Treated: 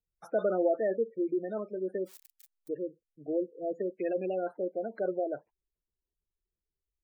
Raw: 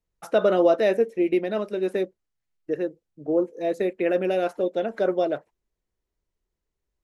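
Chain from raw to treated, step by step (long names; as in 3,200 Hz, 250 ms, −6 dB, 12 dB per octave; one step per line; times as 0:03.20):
0:02.00–0:02.76: spike at every zero crossing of −29 dBFS
gate on every frequency bin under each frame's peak −20 dB strong
level −8.5 dB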